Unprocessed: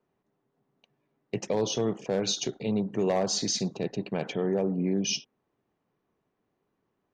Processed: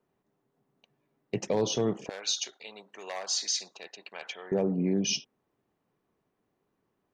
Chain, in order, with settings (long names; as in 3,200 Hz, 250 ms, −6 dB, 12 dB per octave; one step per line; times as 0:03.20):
0:02.09–0:04.52: high-pass filter 1,200 Hz 12 dB per octave